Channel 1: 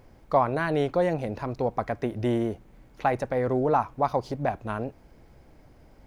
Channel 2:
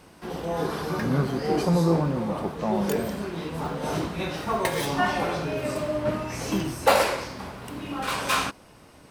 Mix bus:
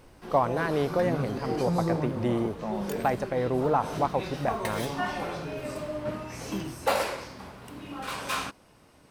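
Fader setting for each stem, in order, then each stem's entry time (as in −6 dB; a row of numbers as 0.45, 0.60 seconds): −2.0, −6.5 decibels; 0.00, 0.00 seconds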